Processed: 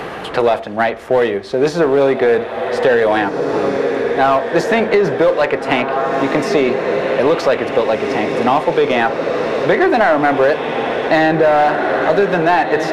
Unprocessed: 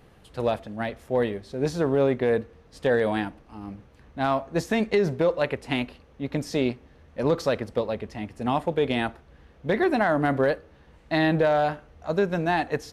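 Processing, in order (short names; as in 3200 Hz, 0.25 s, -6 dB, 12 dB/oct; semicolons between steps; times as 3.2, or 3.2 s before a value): low shelf 140 Hz -8.5 dB; diffused feedback echo 1.795 s, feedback 54%, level -10 dB; on a send at -14 dB: reverb, pre-delay 3 ms; on the sum: overdrive pedal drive 13 dB, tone 1900 Hz, clips at -9.5 dBFS; in parallel at -9 dB: hard clip -24 dBFS, distortion -7 dB; on the sum: three-band squash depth 70%; gain +7 dB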